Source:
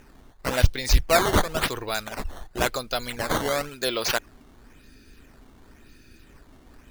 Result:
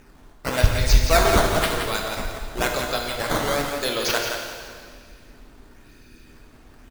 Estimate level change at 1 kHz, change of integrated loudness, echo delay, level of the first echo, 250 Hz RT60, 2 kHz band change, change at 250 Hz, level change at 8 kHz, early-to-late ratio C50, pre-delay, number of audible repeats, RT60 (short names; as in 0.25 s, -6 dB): +3.0 dB, +2.5 dB, 0.171 s, -7.0 dB, 2.2 s, +3.0 dB, +2.5 dB, +3.0 dB, 1.5 dB, 6 ms, 1, 2.0 s